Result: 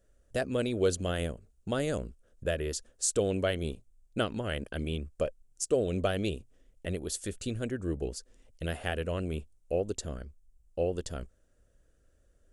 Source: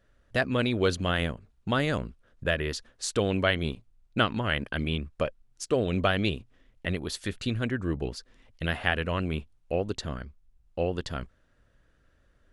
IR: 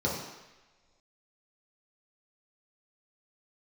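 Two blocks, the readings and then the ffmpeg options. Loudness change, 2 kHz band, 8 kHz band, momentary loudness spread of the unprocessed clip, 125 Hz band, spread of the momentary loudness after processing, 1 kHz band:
−3.5 dB, −10.0 dB, +5.0 dB, 12 LU, −4.5 dB, 13 LU, −8.0 dB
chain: -af "equalizer=frequency=125:width_type=o:width=1:gain=-6,equalizer=frequency=250:width_type=o:width=1:gain=-4,equalizer=frequency=500:width_type=o:width=1:gain=3,equalizer=frequency=1000:width_type=o:width=1:gain=-10,equalizer=frequency=2000:width_type=o:width=1:gain=-8,equalizer=frequency=4000:width_type=o:width=1:gain=-8,equalizer=frequency=8000:width_type=o:width=1:gain=9"

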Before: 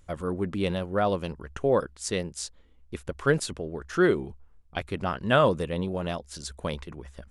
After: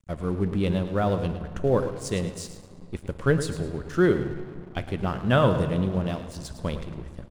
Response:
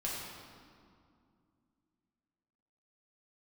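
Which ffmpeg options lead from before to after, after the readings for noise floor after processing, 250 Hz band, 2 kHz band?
−45 dBFS, +3.5 dB, −1.5 dB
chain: -filter_complex "[0:a]lowshelf=frequency=260:gain=10,aecho=1:1:108|216|324:0.251|0.0728|0.0211,asplit=2[link_01][link_02];[1:a]atrim=start_sample=2205,asetrate=37044,aresample=44100[link_03];[link_02][link_03]afir=irnorm=-1:irlink=0,volume=-12.5dB[link_04];[link_01][link_04]amix=inputs=2:normalize=0,aeval=exprs='sgn(val(0))*max(abs(val(0))-0.00794,0)':channel_layout=same,volume=-3.5dB"

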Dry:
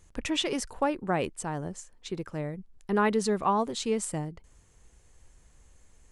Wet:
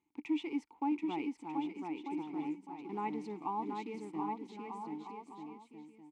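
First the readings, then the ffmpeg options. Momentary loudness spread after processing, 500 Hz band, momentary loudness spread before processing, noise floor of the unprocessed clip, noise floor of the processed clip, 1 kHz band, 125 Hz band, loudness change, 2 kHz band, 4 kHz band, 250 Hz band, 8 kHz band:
13 LU, −15.0 dB, 13 LU, −60 dBFS, −66 dBFS, −7.5 dB, −17.5 dB, −9.5 dB, −14.0 dB, −18.5 dB, −4.0 dB, below −25 dB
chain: -filter_complex "[0:a]highpass=frequency=160:poles=1,asplit=2[link_01][link_02];[link_02]acrusher=bits=5:mix=0:aa=0.000001,volume=-7dB[link_03];[link_01][link_03]amix=inputs=2:normalize=0,asplit=3[link_04][link_05][link_06];[link_04]bandpass=frequency=300:width_type=q:width=8,volume=0dB[link_07];[link_05]bandpass=frequency=870:width_type=q:width=8,volume=-6dB[link_08];[link_06]bandpass=frequency=2240:width_type=q:width=8,volume=-9dB[link_09];[link_07][link_08][link_09]amix=inputs=3:normalize=0,aecho=1:1:730|1241|1599|1849|2024:0.631|0.398|0.251|0.158|0.1,volume=-2dB"

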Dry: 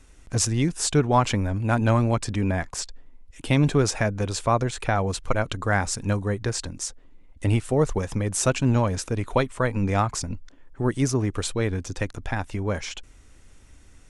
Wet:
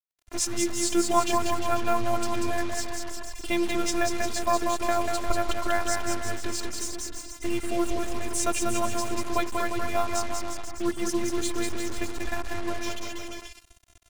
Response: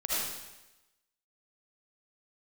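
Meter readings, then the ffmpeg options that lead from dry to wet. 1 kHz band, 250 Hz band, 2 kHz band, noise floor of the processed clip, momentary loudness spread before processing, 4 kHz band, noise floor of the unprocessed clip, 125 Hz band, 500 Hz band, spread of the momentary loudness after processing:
−0.5 dB, −4.0 dB, −2.5 dB, −55 dBFS, 10 LU, −0.5 dB, −51 dBFS, −17.5 dB, −2.5 dB, 9 LU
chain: -af "afftfilt=real='hypot(re,im)*cos(PI*b)':imag='0':win_size=512:overlap=0.75,aecho=1:1:190|351.5|488.8|605.5|704.6:0.631|0.398|0.251|0.158|0.1,acrusher=bits=5:mix=0:aa=0.5"

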